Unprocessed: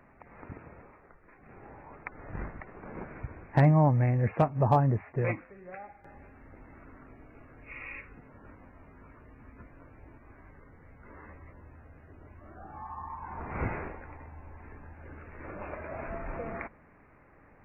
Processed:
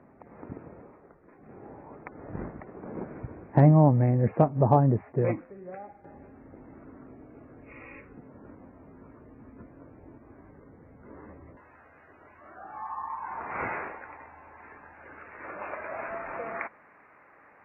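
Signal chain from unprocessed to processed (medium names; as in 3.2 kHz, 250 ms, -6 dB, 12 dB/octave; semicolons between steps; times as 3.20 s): band-pass filter 310 Hz, Q 0.65, from 11.57 s 1.4 kHz; trim +6.5 dB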